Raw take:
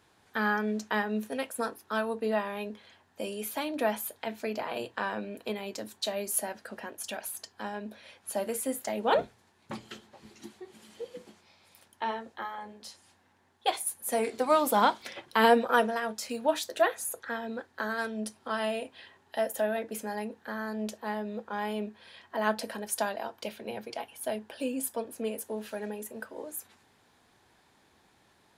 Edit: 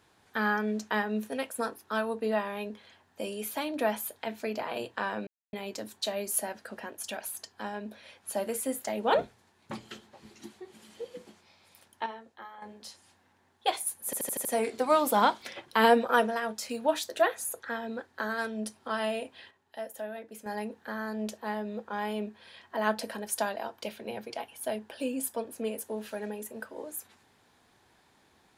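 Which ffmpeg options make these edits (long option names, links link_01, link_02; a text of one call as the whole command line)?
ffmpeg -i in.wav -filter_complex "[0:a]asplit=12[link_01][link_02][link_03][link_04][link_05][link_06][link_07][link_08][link_09][link_10][link_11][link_12];[link_01]atrim=end=5.27,asetpts=PTS-STARTPTS,afade=type=out:start_time=5.266:duration=0.004:curve=hsin[link_13];[link_02]atrim=start=5.27:end=5.53,asetpts=PTS-STARTPTS,volume=0[link_14];[link_03]atrim=start=5.53:end=12.062,asetpts=PTS-STARTPTS,afade=type=in:duration=0.004:curve=hsin[link_15];[link_04]atrim=start=12.058:end=12.622,asetpts=PTS-STARTPTS,volume=-8.5dB[link_16];[link_05]atrim=start=12.618:end=14.132[link_17];[link_06]atrim=start=14.048:end=14.132[link_18];[link_07]atrim=start=14.048:end=14.132[link_19];[link_08]atrim=start=14.048:end=14.132[link_20];[link_09]atrim=start=14.048:end=14.132[link_21];[link_10]atrim=start=14.048:end=19.11,asetpts=PTS-STARTPTS,afade=type=out:start_time=4.932:duration=0.13:curve=log:silence=0.354813[link_22];[link_11]atrim=start=19.11:end=20.06,asetpts=PTS-STARTPTS,volume=-9dB[link_23];[link_12]atrim=start=20.06,asetpts=PTS-STARTPTS,afade=type=in:duration=0.13:curve=log:silence=0.354813[link_24];[link_13][link_14][link_15]concat=n=3:v=0:a=1[link_25];[link_25][link_16]acrossfade=duration=0.004:curve1=hsin:curve2=hsin[link_26];[link_26][link_17]acrossfade=duration=0.004:curve1=hsin:curve2=hsin[link_27];[link_27][link_18]acrossfade=duration=0.004:curve1=hsin:curve2=hsin[link_28];[link_28][link_19]acrossfade=duration=0.004:curve1=hsin:curve2=hsin[link_29];[link_29][link_20]acrossfade=duration=0.004:curve1=hsin:curve2=hsin[link_30];[link_30][link_21]acrossfade=duration=0.004:curve1=hsin:curve2=hsin[link_31];[link_22][link_23][link_24]concat=n=3:v=0:a=1[link_32];[link_31][link_32]acrossfade=duration=0.004:curve1=hsin:curve2=hsin" out.wav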